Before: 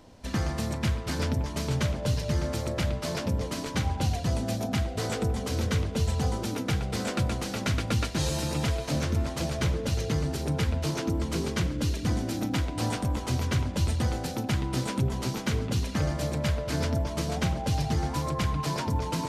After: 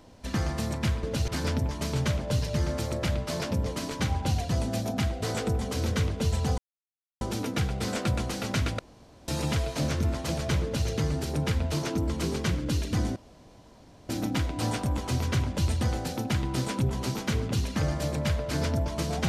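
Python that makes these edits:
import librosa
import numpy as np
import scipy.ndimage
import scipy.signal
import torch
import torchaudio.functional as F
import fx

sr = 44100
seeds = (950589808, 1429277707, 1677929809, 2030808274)

y = fx.edit(x, sr, fx.insert_silence(at_s=6.33, length_s=0.63),
    fx.room_tone_fill(start_s=7.91, length_s=0.49),
    fx.duplicate(start_s=9.75, length_s=0.25, to_s=1.03),
    fx.insert_room_tone(at_s=12.28, length_s=0.93), tone=tone)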